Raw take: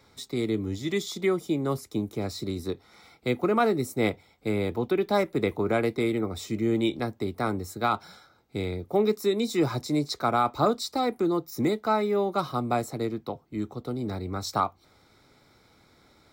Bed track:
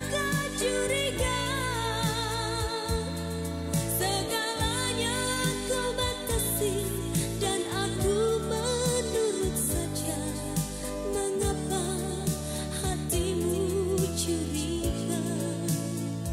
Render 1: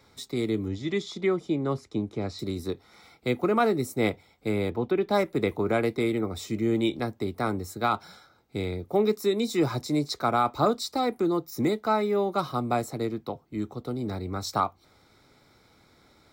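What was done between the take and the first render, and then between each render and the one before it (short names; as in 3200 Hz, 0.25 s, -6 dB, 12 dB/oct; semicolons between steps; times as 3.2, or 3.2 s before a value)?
0.68–2.39 air absorption 100 m; 4.7–5.11 high shelf 5500 Hz -12 dB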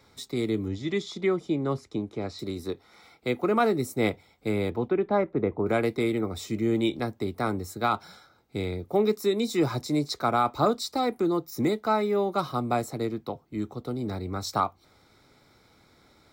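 1.96–3.48 tone controls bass -4 dB, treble -2 dB; 4.88–5.65 LPF 2500 Hz -> 1000 Hz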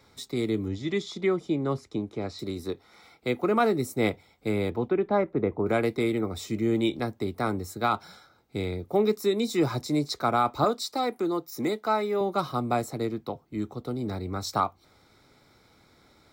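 10.64–12.21 HPF 300 Hz 6 dB/oct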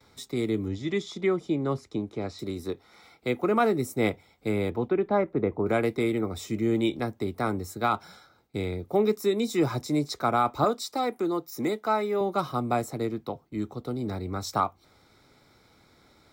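gate with hold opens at -53 dBFS; dynamic EQ 4300 Hz, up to -5 dB, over -55 dBFS, Q 4.3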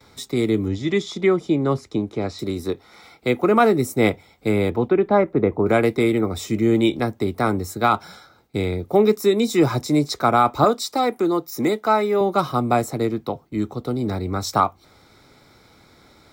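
gain +7.5 dB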